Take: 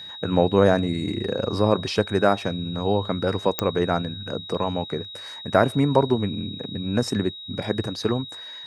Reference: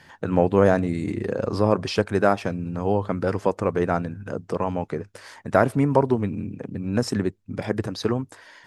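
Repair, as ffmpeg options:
-af "adeclick=t=4,bandreject=f=3.8k:w=30"

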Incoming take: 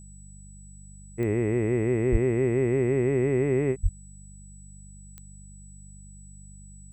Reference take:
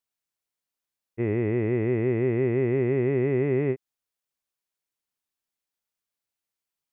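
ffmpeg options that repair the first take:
-filter_complex "[0:a]adeclick=t=4,bandreject=f=49.1:t=h:w=4,bandreject=f=98.2:t=h:w=4,bandreject=f=147.3:t=h:w=4,bandreject=f=196.4:t=h:w=4,bandreject=f=7.9k:w=30,asplit=3[a][b][c];[a]afade=t=out:st=2.11:d=0.02[d];[b]highpass=f=140:w=0.5412,highpass=f=140:w=1.3066,afade=t=in:st=2.11:d=0.02,afade=t=out:st=2.23:d=0.02[e];[c]afade=t=in:st=2.23:d=0.02[f];[d][e][f]amix=inputs=3:normalize=0,asplit=3[g][h][i];[g]afade=t=out:st=3.82:d=0.02[j];[h]highpass=f=140:w=0.5412,highpass=f=140:w=1.3066,afade=t=in:st=3.82:d=0.02,afade=t=out:st=3.94:d=0.02[k];[i]afade=t=in:st=3.94:d=0.02[l];[j][k][l]amix=inputs=3:normalize=0"

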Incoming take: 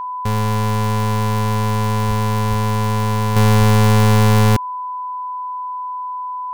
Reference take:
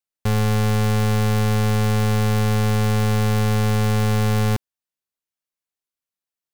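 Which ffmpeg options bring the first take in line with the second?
-filter_complex "[0:a]bandreject=f=1k:w=30,asplit=3[a][b][c];[a]afade=t=out:st=2.07:d=0.02[d];[b]highpass=f=140:w=0.5412,highpass=f=140:w=1.3066,afade=t=in:st=2.07:d=0.02,afade=t=out:st=2.19:d=0.02[e];[c]afade=t=in:st=2.19:d=0.02[f];[d][e][f]amix=inputs=3:normalize=0,asplit=3[g][h][i];[g]afade=t=out:st=2.49:d=0.02[j];[h]highpass=f=140:w=0.5412,highpass=f=140:w=1.3066,afade=t=in:st=2.49:d=0.02,afade=t=out:st=2.61:d=0.02[k];[i]afade=t=in:st=2.61:d=0.02[l];[j][k][l]amix=inputs=3:normalize=0,asplit=3[m][n][o];[m]afade=t=out:st=3.58:d=0.02[p];[n]highpass=f=140:w=0.5412,highpass=f=140:w=1.3066,afade=t=in:st=3.58:d=0.02,afade=t=out:st=3.7:d=0.02[q];[o]afade=t=in:st=3.7:d=0.02[r];[p][q][r]amix=inputs=3:normalize=0,asetnsamples=n=441:p=0,asendcmd='3.36 volume volume -6.5dB',volume=0dB"

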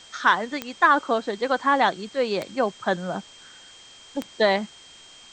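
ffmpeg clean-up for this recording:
-af "adeclick=t=4,bandreject=f=3.2k:w=30,afwtdn=0.0045"

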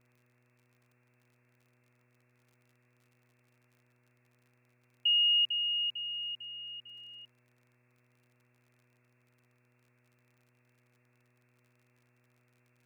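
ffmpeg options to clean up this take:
-af "adeclick=t=4,bandreject=f=122.6:t=h:w=4,bandreject=f=245.2:t=h:w=4,bandreject=f=367.8:t=h:w=4,bandreject=f=490.4:t=h:w=4,bandreject=f=613:t=h:w=4,afftdn=nr=10:nf=-71"

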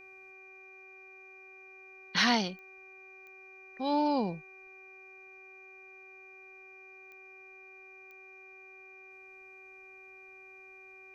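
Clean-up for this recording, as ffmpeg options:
-af "adeclick=t=4,bandreject=f=380.4:t=h:w=4,bandreject=f=760.8:t=h:w=4,bandreject=f=1.1412k:t=h:w=4,bandreject=f=1.5216k:t=h:w=4,bandreject=f=1.902k:t=h:w=4,bandreject=f=2.4k:w=30,agate=range=-21dB:threshold=-45dB"

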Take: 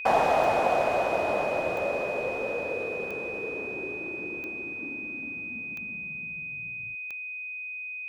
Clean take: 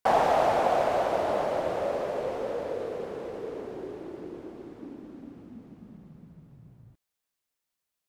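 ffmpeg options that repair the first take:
-af "adeclick=t=4,bandreject=f=2.5k:w=30"

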